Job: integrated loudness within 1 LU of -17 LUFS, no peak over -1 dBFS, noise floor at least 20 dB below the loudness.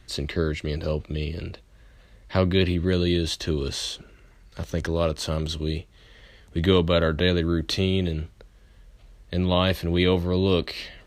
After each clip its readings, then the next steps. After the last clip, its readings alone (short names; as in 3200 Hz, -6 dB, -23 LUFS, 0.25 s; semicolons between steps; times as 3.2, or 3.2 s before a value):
loudness -25.0 LUFS; peak -6.5 dBFS; loudness target -17.0 LUFS
-> gain +8 dB; limiter -1 dBFS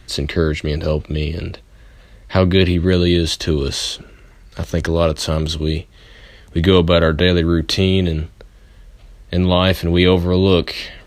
loudness -17.0 LUFS; peak -1.0 dBFS; noise floor -46 dBFS